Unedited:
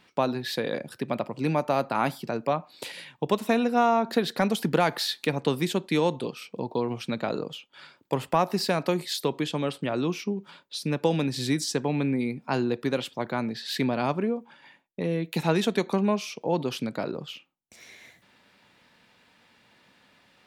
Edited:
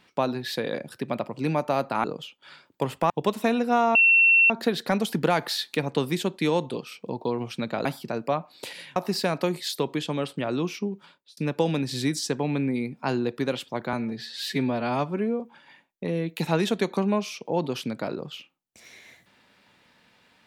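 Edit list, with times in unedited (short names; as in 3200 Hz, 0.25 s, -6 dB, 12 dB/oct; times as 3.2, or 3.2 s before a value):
2.04–3.15 swap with 7.35–8.41
4 add tone 2710 Hz -14 dBFS 0.55 s
10.35–10.82 fade out
13.38–14.36 stretch 1.5×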